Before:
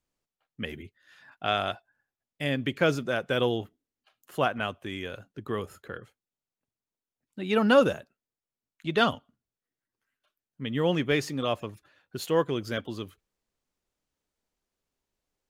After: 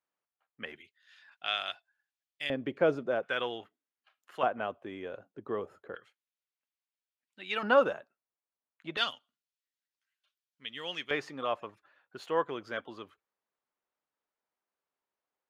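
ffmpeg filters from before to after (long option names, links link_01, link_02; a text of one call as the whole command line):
ffmpeg -i in.wav -af "asetnsamples=nb_out_samples=441:pad=0,asendcmd='0.76 bandpass f 3300;2.5 bandpass f 580;3.23 bandpass f 1600;4.43 bandpass f 610;5.95 bandpass f 2600;7.63 bandpass f 1000;8.97 bandpass f 3800;11.11 bandpass f 1100',bandpass=frequency=1200:width_type=q:width=0.93:csg=0" out.wav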